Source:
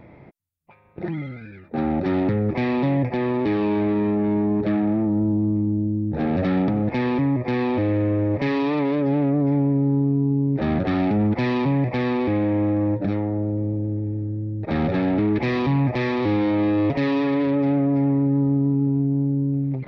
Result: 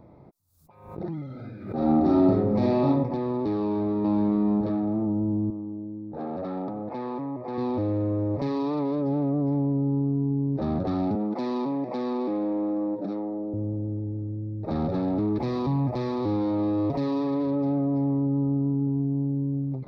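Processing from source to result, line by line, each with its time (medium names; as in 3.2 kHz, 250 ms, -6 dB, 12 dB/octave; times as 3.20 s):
1.25–2.88 s: reverb throw, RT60 0.8 s, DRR -4 dB
3.61–4.26 s: echo throw 430 ms, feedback 15%, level -0.5 dB
5.50–7.58 s: band-pass filter 990 Hz, Q 0.55
11.15–13.54 s: high-pass 210 Hz 24 dB/octave
14.91–17.45 s: word length cut 12-bit, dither none
whole clip: high-order bell 2.3 kHz -14 dB 1.2 oct; band-stop 1.4 kHz, Q 18; swell ahead of each attack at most 84 dB/s; trim -5 dB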